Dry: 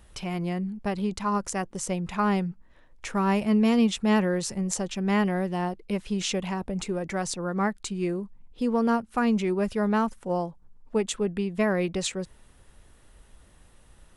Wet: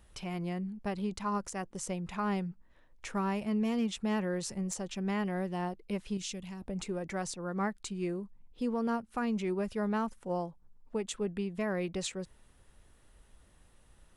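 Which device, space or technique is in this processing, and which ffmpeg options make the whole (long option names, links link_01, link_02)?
clipper into limiter: -filter_complex "[0:a]asoftclip=type=hard:threshold=-14dB,alimiter=limit=-17.5dB:level=0:latency=1:release=205,asettb=1/sr,asplit=3[link_01][link_02][link_03];[link_01]atrim=end=6.174[link_04];[link_02]atrim=start=6.17:end=6.62,asetpts=PTS-STARTPTS,afade=type=in:duration=0.004:curve=qsin,afade=type=out:start_time=0.446:duration=0.004:curve=qsin,equalizer=frequency=820:width=0.37:gain=-14[link_05];[link_03]atrim=start=6.616[link_06];[link_04][link_05]acrossfade=duration=0.004:curve1=hsin:curve2=qsin[link_07];[link_07][link_06]acrossfade=duration=0.004:curve1=qsin:curve2=hsin,volume=-6.5dB"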